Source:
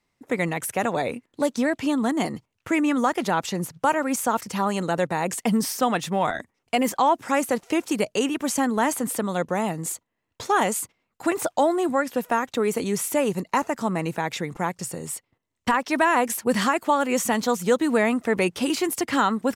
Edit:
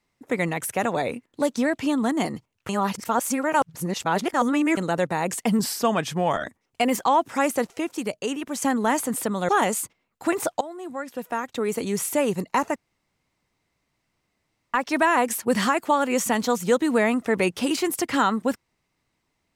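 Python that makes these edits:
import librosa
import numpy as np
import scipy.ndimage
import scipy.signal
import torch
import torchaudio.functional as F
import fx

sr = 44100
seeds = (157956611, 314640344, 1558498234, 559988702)

y = fx.edit(x, sr, fx.reverse_span(start_s=2.69, length_s=2.08),
    fx.speed_span(start_s=5.59, length_s=0.78, speed=0.92),
    fx.clip_gain(start_s=7.66, length_s=0.89, db=-4.5),
    fx.cut(start_s=9.42, length_s=1.06),
    fx.fade_in_from(start_s=11.6, length_s=1.46, floor_db=-19.5),
    fx.room_tone_fill(start_s=13.75, length_s=1.98), tone=tone)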